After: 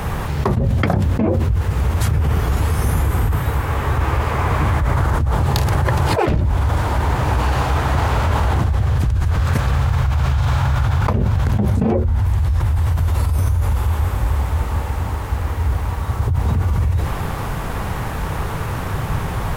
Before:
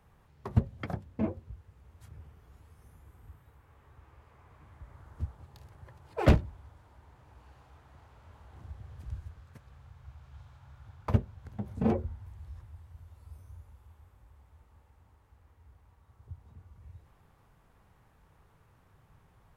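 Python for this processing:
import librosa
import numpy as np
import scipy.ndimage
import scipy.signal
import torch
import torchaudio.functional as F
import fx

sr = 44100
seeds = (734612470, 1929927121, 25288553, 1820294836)

y = fx.env_flatten(x, sr, amount_pct=100)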